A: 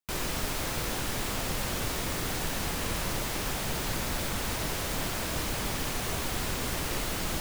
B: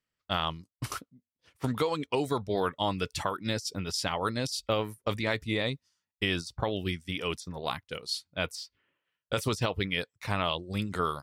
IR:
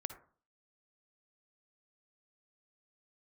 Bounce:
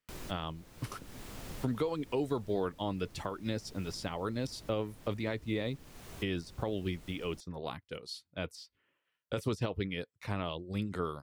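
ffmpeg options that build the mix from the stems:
-filter_complex "[0:a]volume=-10dB[link_01];[1:a]bass=frequency=250:gain=-4,treble=frequency=4000:gain=-3,volume=0.5dB,asplit=2[link_02][link_03];[link_03]apad=whole_len=326527[link_04];[link_01][link_04]sidechaincompress=threshold=-37dB:ratio=6:attack=8.7:release=773[link_05];[link_05][link_02]amix=inputs=2:normalize=0,acrossover=split=460[link_06][link_07];[link_07]acompressor=threshold=-57dB:ratio=1.5[link_08];[link_06][link_08]amix=inputs=2:normalize=0"

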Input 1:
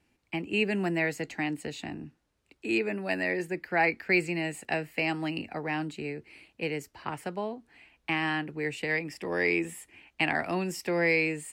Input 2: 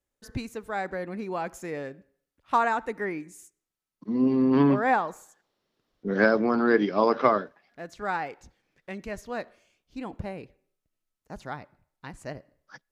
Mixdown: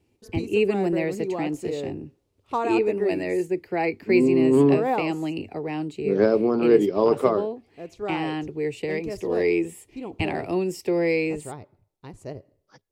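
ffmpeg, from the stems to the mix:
ffmpeg -i stem1.wav -i stem2.wav -filter_complex "[0:a]volume=-0.5dB[link_01];[1:a]volume=-2.5dB[link_02];[link_01][link_02]amix=inputs=2:normalize=0,equalizer=frequency=100:width_type=o:width=0.67:gain=12,equalizer=frequency=400:width_type=o:width=0.67:gain=11,equalizer=frequency=1600:width_type=o:width=0.67:gain=-10" out.wav

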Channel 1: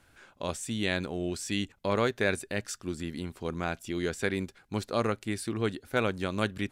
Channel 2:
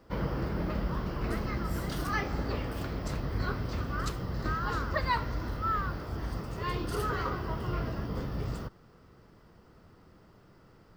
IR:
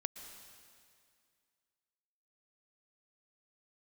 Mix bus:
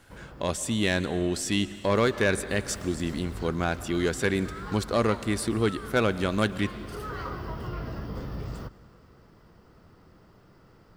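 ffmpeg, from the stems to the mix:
-filter_complex "[0:a]bandreject=frequency=2400:width=16,volume=2.5dB,asplit=3[link_01][link_02][link_03];[link_02]volume=-4dB[link_04];[1:a]acompressor=threshold=-35dB:ratio=2,volume=-0.5dB,afade=type=in:start_time=1.84:duration=0.55:silence=0.251189,asplit=2[link_05][link_06];[link_06]volume=-8dB[link_07];[link_03]apad=whole_len=483749[link_08];[link_05][link_08]sidechaincompress=threshold=-35dB:ratio=8:attack=11:release=637[link_09];[2:a]atrim=start_sample=2205[link_10];[link_04][link_07]amix=inputs=2:normalize=0[link_11];[link_11][link_10]afir=irnorm=-1:irlink=0[link_12];[link_01][link_09][link_12]amix=inputs=3:normalize=0,asoftclip=type=tanh:threshold=-14dB"

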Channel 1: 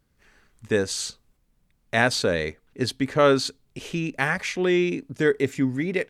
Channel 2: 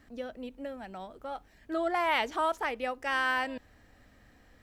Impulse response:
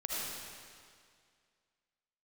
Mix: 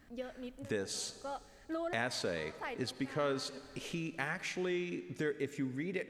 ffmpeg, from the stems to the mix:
-filter_complex "[0:a]equalizer=frequency=62:width=1.4:gain=-8.5,acompressor=threshold=-41dB:ratio=2,volume=-3dB,asplit=3[link_01][link_02][link_03];[link_02]volume=-17dB[link_04];[1:a]acompressor=threshold=-32dB:ratio=6,volume=-3dB,asplit=2[link_05][link_06];[link_06]volume=-23dB[link_07];[link_03]apad=whole_len=204163[link_08];[link_05][link_08]sidechaincompress=threshold=-58dB:ratio=8:attack=5.1:release=128[link_09];[2:a]atrim=start_sample=2205[link_10];[link_04][link_07]amix=inputs=2:normalize=0[link_11];[link_11][link_10]afir=irnorm=-1:irlink=0[link_12];[link_01][link_09][link_12]amix=inputs=3:normalize=0"

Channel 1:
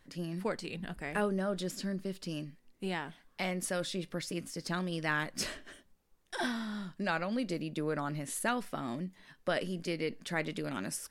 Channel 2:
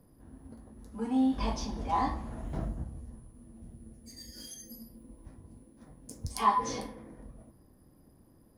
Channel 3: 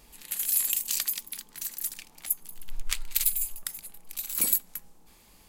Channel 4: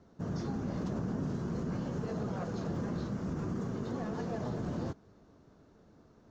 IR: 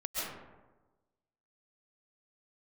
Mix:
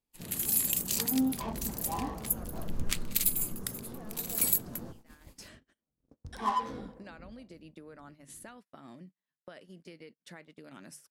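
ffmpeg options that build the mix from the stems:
-filter_complex "[0:a]highpass=frequency=87:width=0.5412,highpass=frequency=87:width=1.3066,acompressor=threshold=-40dB:ratio=10,volume=-5.5dB,afade=type=in:start_time=5.05:duration=0.38:silence=0.223872[link_01];[1:a]adynamicsmooth=sensitivity=6.5:basefreq=750,acrossover=split=450[link_02][link_03];[link_02]aeval=exprs='val(0)*(1-0.7/2+0.7/2*cos(2*PI*2.5*n/s))':channel_layout=same[link_04];[link_03]aeval=exprs='val(0)*(1-0.7/2-0.7/2*cos(2*PI*2.5*n/s))':channel_layout=same[link_05];[link_04][link_05]amix=inputs=2:normalize=0,volume=-0.5dB[link_06];[2:a]volume=-2.5dB[link_07];[3:a]volume=-8.5dB[link_08];[link_01][link_06][link_07][link_08]amix=inputs=4:normalize=0,bandreject=frequency=50:width_type=h:width=6,bandreject=frequency=100:width_type=h:width=6,bandreject=frequency=150:width_type=h:width=6,agate=range=-32dB:threshold=-51dB:ratio=16:detection=peak"

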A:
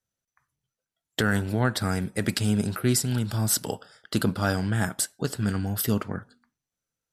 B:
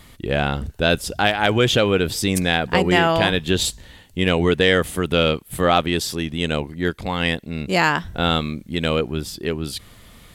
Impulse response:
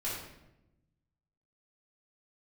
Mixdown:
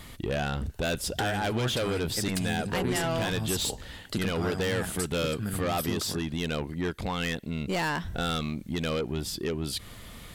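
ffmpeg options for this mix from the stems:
-filter_complex "[0:a]volume=-2.5dB[link_01];[1:a]asoftclip=type=tanh:threshold=-20dB,volume=1dB[link_02];[link_01][link_02]amix=inputs=2:normalize=0,acompressor=threshold=-31dB:ratio=2"

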